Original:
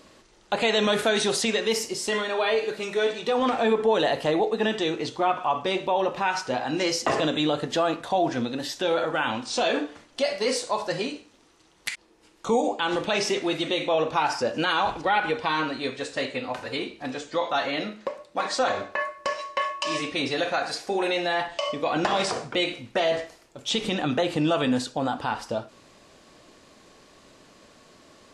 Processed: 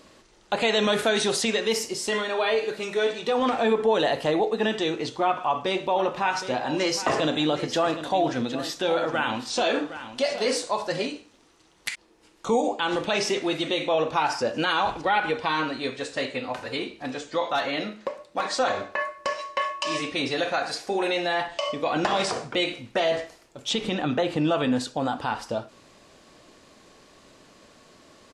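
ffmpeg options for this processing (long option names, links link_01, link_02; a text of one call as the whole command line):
ffmpeg -i in.wav -filter_complex "[0:a]asplit=3[link_01][link_02][link_03];[link_01]afade=type=out:start_time=5.89:duration=0.02[link_04];[link_02]aecho=1:1:765:0.251,afade=type=in:start_time=5.89:duration=0.02,afade=type=out:start_time=11.06:duration=0.02[link_05];[link_03]afade=type=in:start_time=11.06:duration=0.02[link_06];[link_04][link_05][link_06]amix=inputs=3:normalize=0,asettb=1/sr,asplit=3[link_07][link_08][link_09];[link_07]atrim=end=17.554[link_10];[link_08]atrim=start=17.55:end=18.6,asetpts=PTS-STARTPTS,afade=type=in:duration=0.004:curve=qsin,afade=type=out:start_time=1.046:duration=0.004:curve=qsin,asoftclip=type=hard:threshold=-17.5dB[link_11];[link_09]atrim=start=18.596[link_12];[link_10][link_11]acrossfade=duration=0.004:curve1=hsin:curve2=qsin[link_13];[link_13][link_12]acrossfade=duration=0.004:curve1=qsin:curve2=hsin,asettb=1/sr,asplit=3[link_14][link_15][link_16];[link_14]atrim=end=23.734[link_17];[link_15]atrim=start=23.73:end=24.81,asetpts=PTS-STARTPTS,afade=type=in:duration=0.004:curve=qsin,afade=type=out:start_time=1.076:duration=0.004:curve=qsin,highshelf=frequency=5000:gain=-8[link_18];[link_16]atrim=start=24.806[link_19];[link_17][link_18]acrossfade=duration=0.004:curve1=hsin:curve2=qsin[link_20];[link_20][link_19]acrossfade=duration=0.004:curve1=qsin:curve2=hsin" out.wav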